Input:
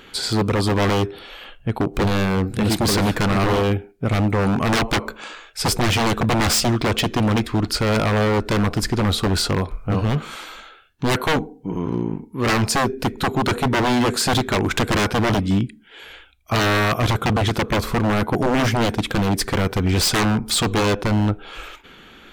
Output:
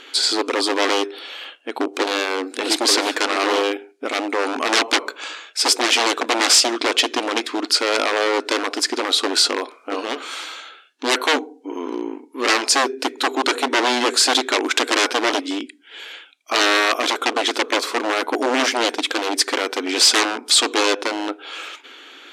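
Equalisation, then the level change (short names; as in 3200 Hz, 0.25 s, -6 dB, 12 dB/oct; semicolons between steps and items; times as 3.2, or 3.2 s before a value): brick-wall FIR high-pass 250 Hz; LPF 10000 Hz 12 dB/oct; bell 5400 Hz +7.5 dB 2.8 oct; 0.0 dB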